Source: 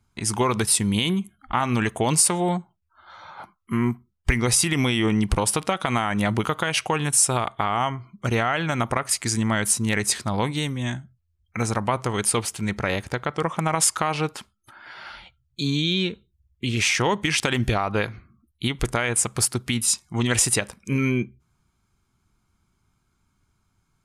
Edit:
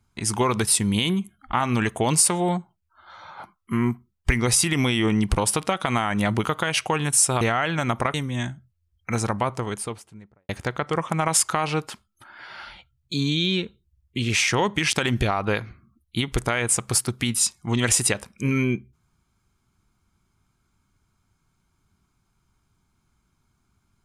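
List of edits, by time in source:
7.41–8.32 cut
9.05–10.61 cut
11.68–12.96 studio fade out

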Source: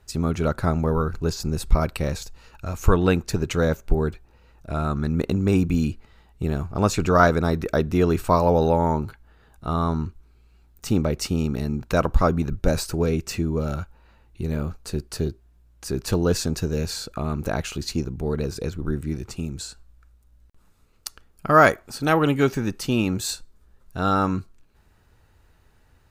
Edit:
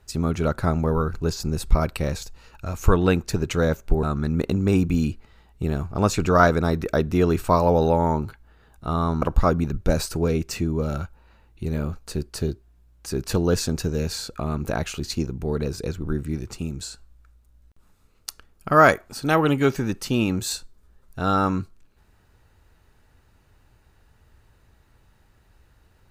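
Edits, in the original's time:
4.03–4.83 cut
10.02–12 cut

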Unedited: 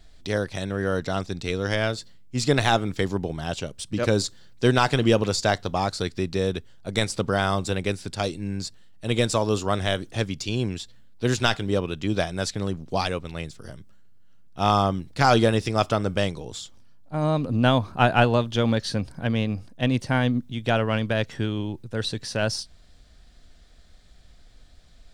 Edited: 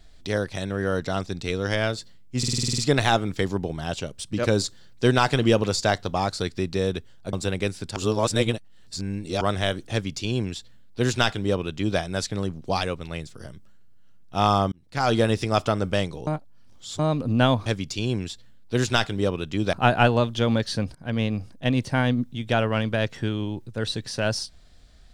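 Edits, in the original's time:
2.38 stutter 0.05 s, 9 plays
6.93–7.57 cut
8.2–9.65 reverse
10.16–12.23 copy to 17.9
14.96–15.53 fade in
16.51–17.23 reverse
19.12–19.37 fade in, from -16 dB

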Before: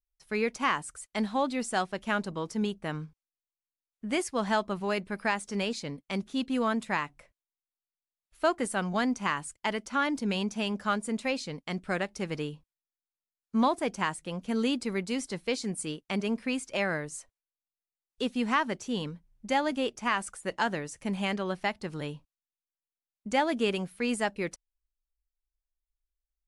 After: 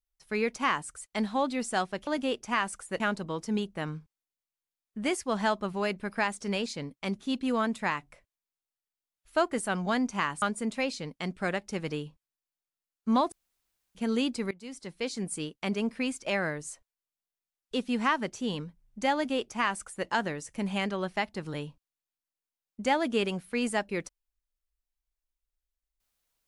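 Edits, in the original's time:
9.49–10.89 cut
13.79–14.42 room tone
14.98–15.76 fade in, from -20.5 dB
19.61–20.54 copy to 2.07

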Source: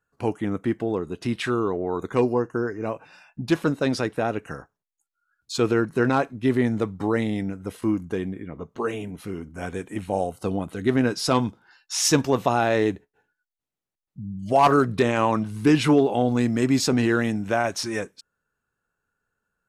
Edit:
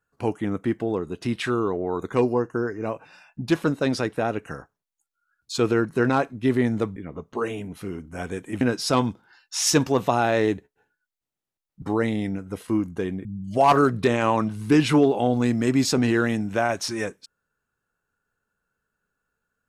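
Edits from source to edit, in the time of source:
6.96–8.39 move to 14.2
10.04–10.99 cut

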